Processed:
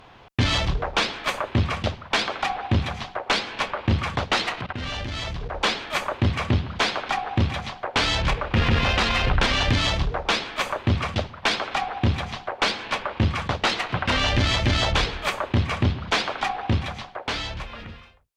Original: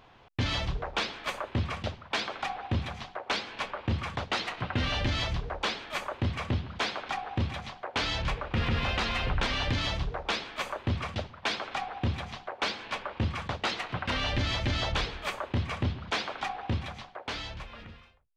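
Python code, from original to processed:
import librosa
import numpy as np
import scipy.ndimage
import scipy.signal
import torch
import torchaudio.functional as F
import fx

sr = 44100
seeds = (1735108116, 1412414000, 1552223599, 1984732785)

y = fx.cheby_harmonics(x, sr, harmonics=(2,), levels_db=(-15,), full_scale_db=-20.0)
y = fx.level_steps(y, sr, step_db=19, at=(4.61, 5.57))
y = y * librosa.db_to_amplitude(8.0)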